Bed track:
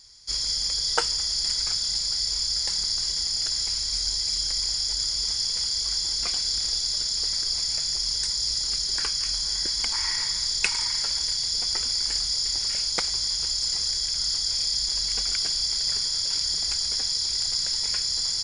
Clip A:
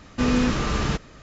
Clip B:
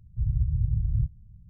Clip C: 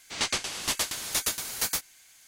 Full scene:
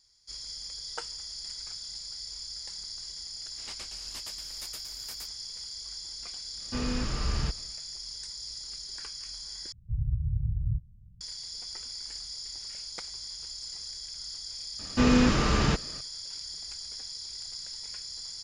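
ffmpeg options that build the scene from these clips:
-filter_complex "[1:a]asplit=2[s0][s1];[0:a]volume=0.2[s2];[s0]asubboost=boost=10:cutoff=120[s3];[s2]asplit=2[s4][s5];[s4]atrim=end=9.724[s6];[2:a]atrim=end=1.49,asetpts=PTS-STARTPTS,volume=0.631[s7];[s5]atrim=start=11.206[s8];[3:a]atrim=end=2.27,asetpts=PTS-STARTPTS,volume=0.141,afade=t=in:d=0.004:c=hsin,afade=t=out:st=2.266:d=0.004:c=hsin,adelay=3470[s9];[s3]atrim=end=1.22,asetpts=PTS-STARTPTS,volume=0.282,afade=t=in:d=0.1,afade=t=out:st=1.12:d=0.1,adelay=6540[s10];[s1]atrim=end=1.22,asetpts=PTS-STARTPTS,volume=0.944,afade=t=in:d=0.004:c=hsin,afade=t=out:st=1.216:d=0.004:c=hsin,adelay=14790[s11];[s6][s7]acrossfade=d=0.004:c1=hsin:c2=hsin[s12];[s12][s8]acrossfade=d=0.004:c1=hsin:c2=hsin[s13];[s13][s9][s10][s11]amix=inputs=4:normalize=0"

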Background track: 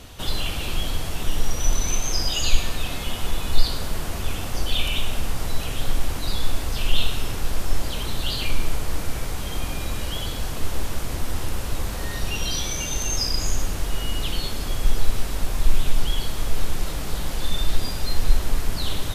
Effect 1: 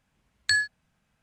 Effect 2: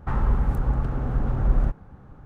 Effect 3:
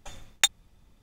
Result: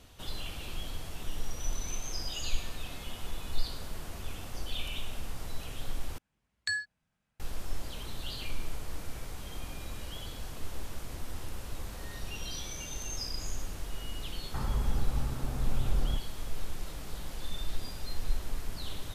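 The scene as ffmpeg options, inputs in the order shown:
-filter_complex "[0:a]volume=0.224,asplit=2[s0][s1];[s0]atrim=end=6.184[s2];[1:a]atrim=end=1.22,asetpts=PTS-STARTPTS,volume=0.355[s3];[s1]atrim=start=7.396[s4];[2:a]atrim=end=2.25,asetpts=PTS-STARTPTS,volume=0.335,afade=t=in:d=0.004:c=hsin,afade=t=out:st=2.246:d=0.004:c=hsin,adelay=14470[s5];[s2][s3]acrossfade=d=0.004:c1=hsin:c2=hsin[s6];[s6][s4]acrossfade=d=0.004:c1=hsin:c2=hsin[s7];[s7][s5]amix=inputs=2:normalize=0"

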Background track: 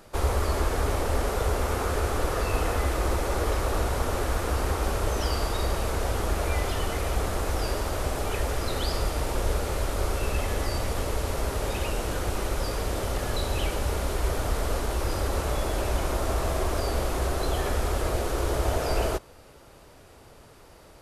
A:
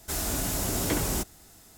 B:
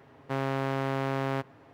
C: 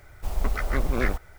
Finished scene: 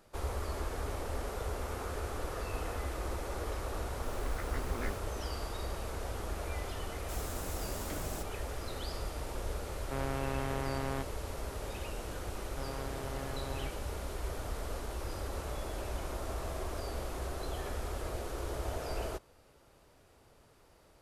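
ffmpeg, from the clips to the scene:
-filter_complex "[2:a]asplit=2[s0][s1];[0:a]volume=0.266[s2];[s0]lowpass=7200[s3];[3:a]atrim=end=1.38,asetpts=PTS-STARTPTS,volume=0.2,afade=t=in:d=0.004:c=hsin,afade=t=out:st=1.376:d=0.004:c=hsin,adelay=168021S[s4];[1:a]atrim=end=1.77,asetpts=PTS-STARTPTS,volume=0.178,afade=t=in:d=0.004:c=hsin,afade=t=out:st=1.766:d=0.004:c=hsin,adelay=7000[s5];[s3]atrim=end=1.73,asetpts=PTS-STARTPTS,volume=0.447,afade=t=in:d=0.004:c=hsin,afade=t=out:st=1.726:d=0.004:c=hsin,adelay=9610[s6];[s1]atrim=end=1.73,asetpts=PTS-STARTPTS,volume=0.2,afade=t=in:d=0.004:c=hsin,afade=t=out:st=1.726:d=0.004:c=hsin,adelay=12270[s7];[s2][s4][s5][s6][s7]amix=inputs=5:normalize=0"

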